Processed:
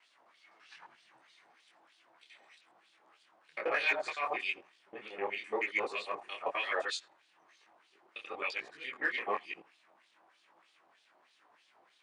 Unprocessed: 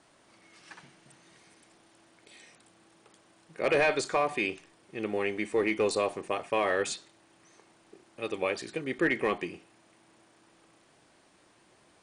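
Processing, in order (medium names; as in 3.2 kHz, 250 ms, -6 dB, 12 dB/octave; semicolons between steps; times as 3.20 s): time reversed locally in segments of 85 ms; wah-wah 3.2 Hz 760–3900 Hz, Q 2.3; in parallel at -7 dB: overload inside the chain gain 26 dB; on the sum: detune thickener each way 36 cents; trim +4 dB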